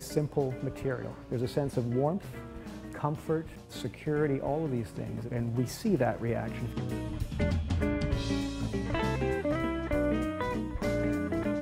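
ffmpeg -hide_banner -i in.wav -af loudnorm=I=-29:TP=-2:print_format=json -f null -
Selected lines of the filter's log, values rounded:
"input_i" : "-32.0",
"input_tp" : "-14.6",
"input_lra" : "2.3",
"input_thresh" : "-42.1",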